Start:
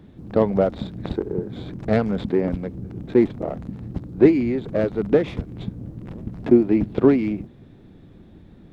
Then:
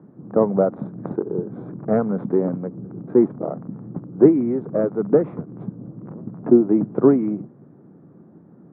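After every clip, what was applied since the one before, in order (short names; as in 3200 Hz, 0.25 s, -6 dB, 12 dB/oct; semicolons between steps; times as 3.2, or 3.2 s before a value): Chebyshev band-pass 140–1300 Hz, order 3; gain +1.5 dB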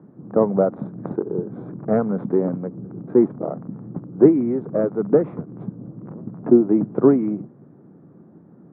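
nothing audible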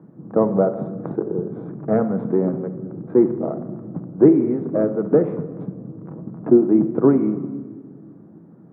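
shoebox room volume 1600 m³, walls mixed, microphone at 0.63 m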